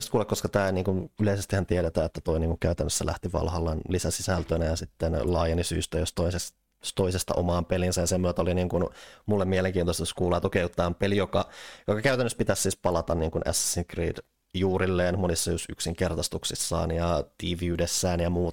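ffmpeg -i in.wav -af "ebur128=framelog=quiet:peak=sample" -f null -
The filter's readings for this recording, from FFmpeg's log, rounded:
Integrated loudness:
  I:         -27.6 LUFS
  Threshold: -37.6 LUFS
Loudness range:
  LRA:         1.4 LU
  Threshold: -47.7 LUFS
  LRA low:   -28.4 LUFS
  LRA high:  -26.9 LUFS
Sample peak:
  Peak:      -10.4 dBFS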